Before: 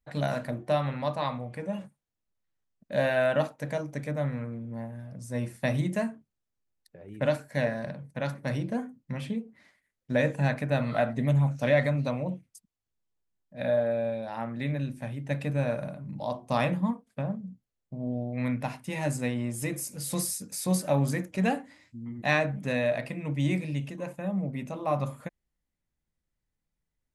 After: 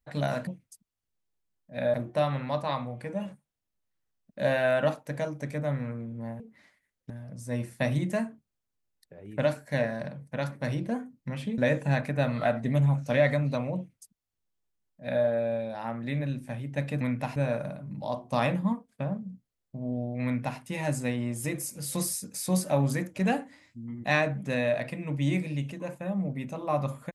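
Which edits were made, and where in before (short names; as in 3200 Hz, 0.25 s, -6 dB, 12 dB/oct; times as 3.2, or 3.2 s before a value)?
9.41–10.11 move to 4.93
12.3–13.77 copy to 0.47
18.42–18.77 copy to 15.54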